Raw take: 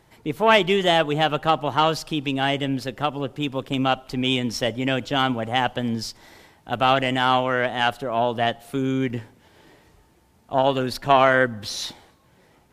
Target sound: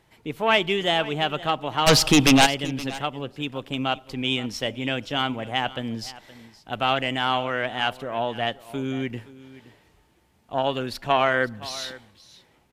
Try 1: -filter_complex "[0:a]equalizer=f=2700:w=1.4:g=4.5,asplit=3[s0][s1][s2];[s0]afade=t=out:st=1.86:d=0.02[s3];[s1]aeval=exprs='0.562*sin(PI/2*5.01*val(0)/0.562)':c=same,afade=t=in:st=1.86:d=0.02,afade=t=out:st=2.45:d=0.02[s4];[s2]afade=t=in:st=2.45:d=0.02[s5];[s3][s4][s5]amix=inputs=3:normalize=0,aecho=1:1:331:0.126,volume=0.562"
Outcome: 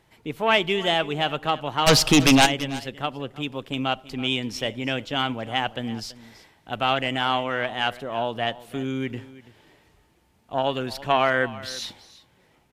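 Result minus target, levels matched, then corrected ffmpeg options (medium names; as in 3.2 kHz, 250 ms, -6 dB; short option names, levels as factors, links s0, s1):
echo 189 ms early
-filter_complex "[0:a]equalizer=f=2700:w=1.4:g=4.5,asplit=3[s0][s1][s2];[s0]afade=t=out:st=1.86:d=0.02[s3];[s1]aeval=exprs='0.562*sin(PI/2*5.01*val(0)/0.562)':c=same,afade=t=in:st=1.86:d=0.02,afade=t=out:st=2.45:d=0.02[s4];[s2]afade=t=in:st=2.45:d=0.02[s5];[s3][s4][s5]amix=inputs=3:normalize=0,aecho=1:1:520:0.126,volume=0.562"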